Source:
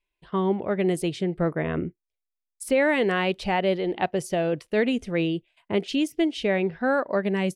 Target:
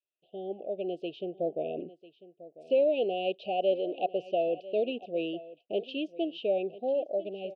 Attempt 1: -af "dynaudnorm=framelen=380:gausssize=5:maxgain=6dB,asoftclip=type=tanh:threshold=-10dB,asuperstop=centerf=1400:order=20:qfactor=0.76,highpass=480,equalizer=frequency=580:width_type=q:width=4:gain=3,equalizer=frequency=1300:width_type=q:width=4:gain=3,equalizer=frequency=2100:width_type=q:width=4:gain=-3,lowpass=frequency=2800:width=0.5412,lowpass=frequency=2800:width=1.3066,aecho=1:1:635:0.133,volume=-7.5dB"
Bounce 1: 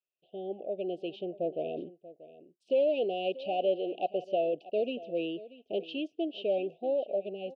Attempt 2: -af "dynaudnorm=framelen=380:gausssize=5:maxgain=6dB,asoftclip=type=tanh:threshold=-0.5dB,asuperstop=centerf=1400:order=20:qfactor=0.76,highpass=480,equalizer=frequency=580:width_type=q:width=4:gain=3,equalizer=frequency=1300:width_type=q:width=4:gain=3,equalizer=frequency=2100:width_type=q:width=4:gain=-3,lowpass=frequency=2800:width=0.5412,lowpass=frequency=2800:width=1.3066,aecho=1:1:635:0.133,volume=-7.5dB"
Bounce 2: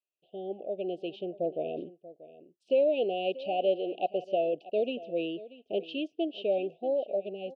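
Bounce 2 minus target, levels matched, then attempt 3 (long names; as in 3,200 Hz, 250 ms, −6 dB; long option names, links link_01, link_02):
echo 361 ms early
-af "dynaudnorm=framelen=380:gausssize=5:maxgain=6dB,asoftclip=type=tanh:threshold=-0.5dB,asuperstop=centerf=1400:order=20:qfactor=0.76,highpass=480,equalizer=frequency=580:width_type=q:width=4:gain=3,equalizer=frequency=1300:width_type=q:width=4:gain=3,equalizer=frequency=2100:width_type=q:width=4:gain=-3,lowpass=frequency=2800:width=0.5412,lowpass=frequency=2800:width=1.3066,aecho=1:1:996:0.133,volume=-7.5dB"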